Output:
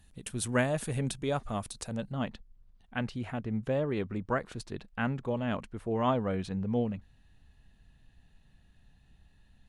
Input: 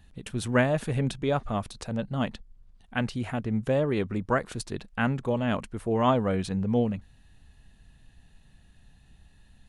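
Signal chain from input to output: peaking EQ 10 kHz +11 dB 1.4 oct, from 2.12 s -6 dB; trim -5 dB

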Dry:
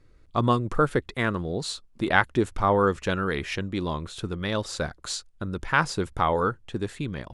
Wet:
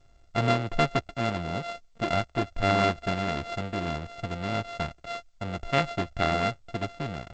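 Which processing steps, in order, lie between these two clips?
sorted samples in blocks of 64 samples; 2.14–2.56 s: valve stage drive 14 dB, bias 0.55; trim -2 dB; G.722 64 kbps 16 kHz

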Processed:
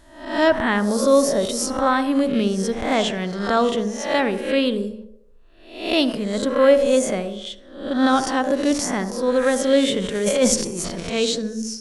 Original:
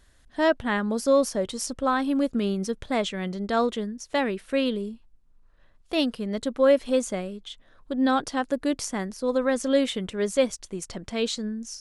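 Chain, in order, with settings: reverse spectral sustain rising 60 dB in 0.58 s; 10.15–11.00 s: transient shaper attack -12 dB, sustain +10 dB; band-passed feedback delay 73 ms, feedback 58%, band-pass 470 Hz, level -10.5 dB; on a send at -16 dB: reverberation, pre-delay 46 ms; on the sum: trim +4 dB

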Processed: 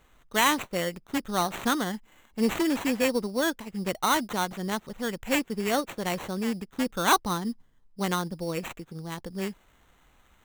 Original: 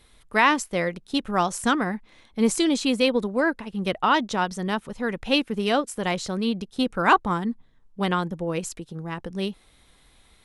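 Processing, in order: sample-rate reducer 5 kHz, jitter 0%; trim -4 dB

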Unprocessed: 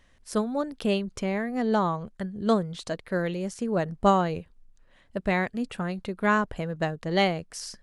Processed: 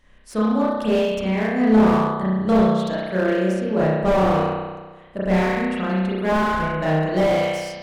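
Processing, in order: spring tank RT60 1.3 s, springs 32 ms, chirp 35 ms, DRR -9 dB; slew-rate limiter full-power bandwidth 120 Hz; trim -1 dB

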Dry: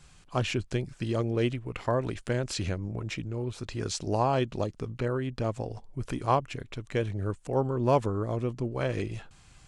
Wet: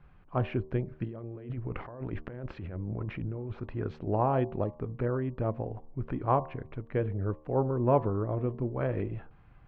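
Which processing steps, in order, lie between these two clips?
1.04–3.60 s: compressor with a negative ratio -37 dBFS, ratio -1; Bessel low-pass 1.4 kHz, order 4; de-hum 76.4 Hz, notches 15

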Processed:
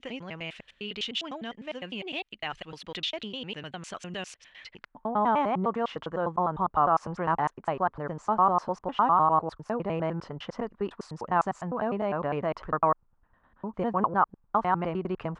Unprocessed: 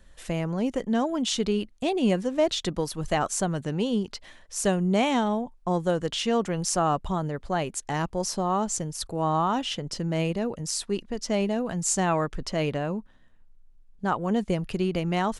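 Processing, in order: slices played last to first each 101 ms, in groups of 8; peak limiter -17 dBFS, peak gain reduction 7.5 dB; gain riding within 4 dB 2 s; RIAA curve playback; band-pass sweep 2.8 kHz -> 1.1 kHz, 4.54–5.13 s; trim +8.5 dB

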